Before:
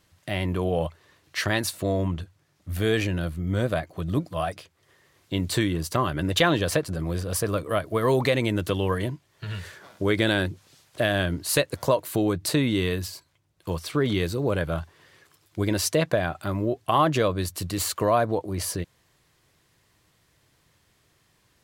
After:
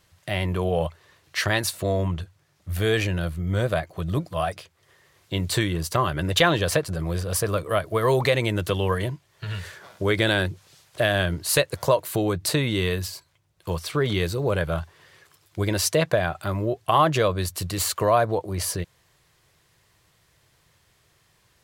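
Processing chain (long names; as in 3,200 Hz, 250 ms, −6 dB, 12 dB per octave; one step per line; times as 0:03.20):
parametric band 260 Hz −9.5 dB 0.55 octaves
level +2.5 dB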